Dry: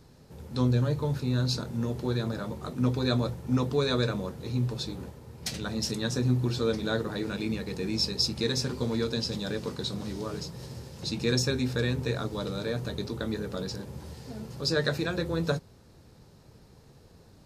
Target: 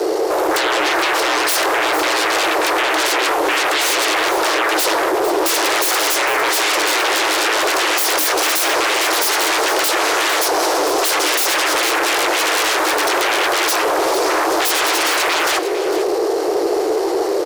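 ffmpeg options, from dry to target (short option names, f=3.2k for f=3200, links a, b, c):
-filter_complex "[0:a]lowshelf=f=440:g=6,asplit=2[a][b];[b]acompressor=threshold=-39dB:ratio=6,volume=0.5dB[c];[a][c]amix=inputs=2:normalize=0,alimiter=limit=-19dB:level=0:latency=1:release=24,acontrast=43,aeval=exprs='0.224*sin(PI/2*8.91*val(0)/0.224)':c=same,afreqshift=300,asoftclip=type=tanh:threshold=-7.5dB,aecho=1:1:453:0.251"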